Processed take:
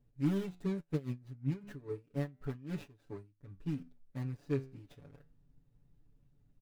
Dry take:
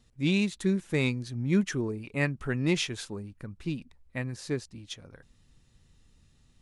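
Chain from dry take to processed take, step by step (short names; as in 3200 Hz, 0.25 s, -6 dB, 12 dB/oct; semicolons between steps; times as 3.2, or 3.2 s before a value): median filter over 41 samples; comb 7 ms, depth 99%; flange 0.32 Hz, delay 8.7 ms, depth 6.5 ms, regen +78%; 0.8–3.59 dB-linear tremolo 6.4 Hz -> 2.2 Hz, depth 20 dB; gain -3 dB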